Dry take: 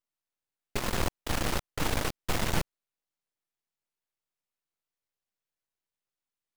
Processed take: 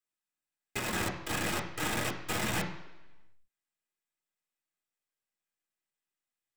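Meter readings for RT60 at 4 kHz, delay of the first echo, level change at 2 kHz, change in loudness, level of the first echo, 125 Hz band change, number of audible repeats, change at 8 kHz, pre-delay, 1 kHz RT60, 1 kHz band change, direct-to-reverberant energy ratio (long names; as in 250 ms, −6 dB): 1.0 s, no echo audible, +1.5 dB, −1.5 dB, no echo audible, −4.0 dB, no echo audible, 0.0 dB, 3 ms, 1.1 s, −1.5 dB, −1.5 dB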